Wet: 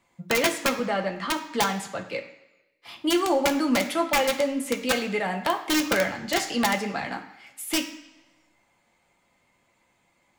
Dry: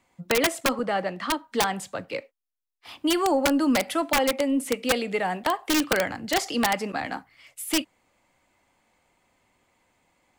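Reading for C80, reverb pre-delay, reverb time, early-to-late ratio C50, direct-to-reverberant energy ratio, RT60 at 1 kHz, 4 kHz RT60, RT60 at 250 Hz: 13.0 dB, 3 ms, 1.1 s, 11.0 dB, 2.0 dB, 1.1 s, 1.0 s, 0.95 s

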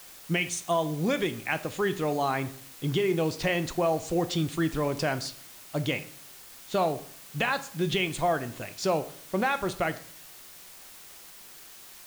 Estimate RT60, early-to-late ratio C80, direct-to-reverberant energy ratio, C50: 0.55 s, 19.0 dB, 10.0 dB, 15.5 dB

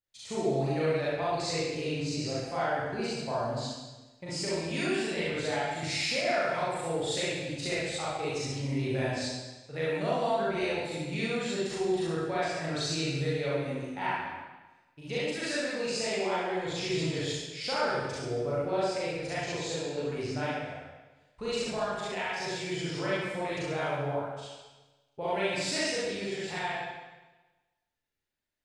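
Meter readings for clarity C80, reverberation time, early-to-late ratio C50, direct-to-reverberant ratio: 0.0 dB, 1.2 s, -4.0 dB, -9.5 dB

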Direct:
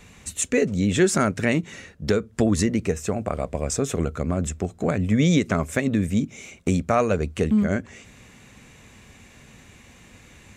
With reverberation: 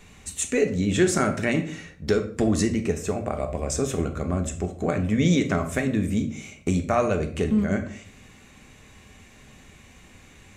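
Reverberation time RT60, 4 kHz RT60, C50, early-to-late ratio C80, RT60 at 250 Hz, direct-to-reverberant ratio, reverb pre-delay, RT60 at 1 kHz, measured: 0.50 s, 0.35 s, 11.5 dB, 15.0 dB, 0.65 s, 4.5 dB, 3 ms, 0.45 s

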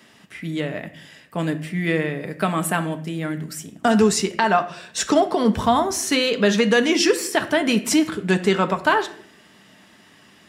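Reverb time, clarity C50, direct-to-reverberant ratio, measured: 0.60 s, 14.0 dB, 7.0 dB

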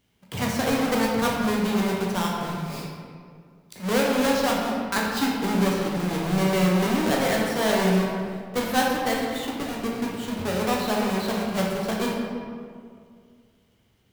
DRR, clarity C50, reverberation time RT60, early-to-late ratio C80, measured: -3.0 dB, 0.0 dB, 2.1 s, 2.0 dB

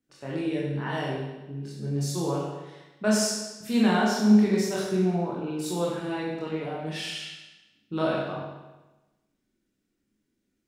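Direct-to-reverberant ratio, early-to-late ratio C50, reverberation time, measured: -5.0 dB, 0.5 dB, 1.1 s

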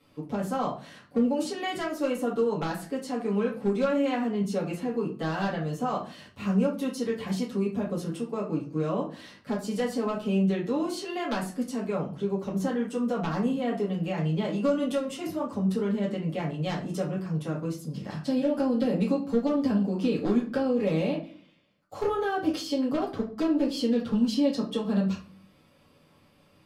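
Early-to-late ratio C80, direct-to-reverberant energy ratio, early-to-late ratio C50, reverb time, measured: 14.0 dB, -9.5 dB, 8.5 dB, 0.40 s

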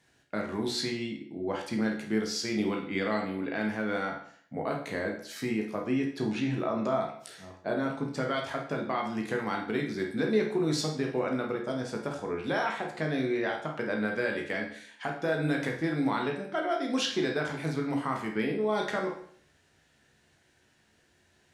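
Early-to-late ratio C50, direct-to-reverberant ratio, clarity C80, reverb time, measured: 6.5 dB, 0.0 dB, 10.5 dB, 0.60 s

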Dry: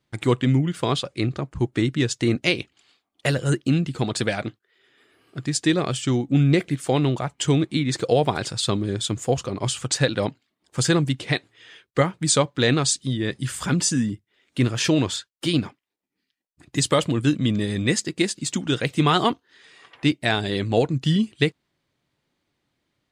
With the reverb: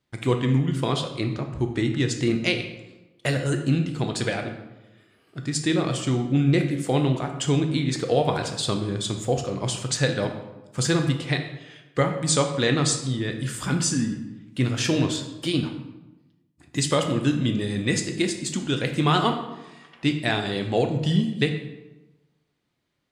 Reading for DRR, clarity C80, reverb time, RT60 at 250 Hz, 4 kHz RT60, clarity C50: 4.5 dB, 10.0 dB, 1.0 s, 1.2 s, 0.70 s, 7.5 dB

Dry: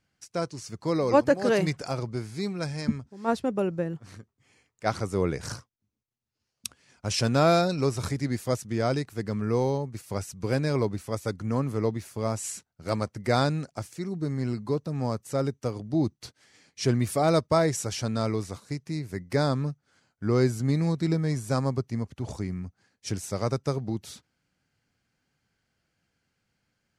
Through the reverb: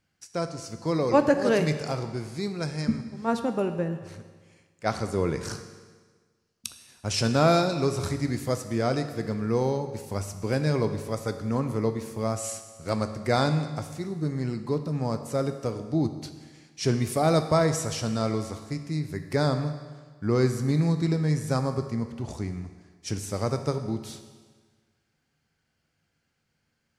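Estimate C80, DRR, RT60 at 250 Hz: 10.5 dB, 7.5 dB, 1.5 s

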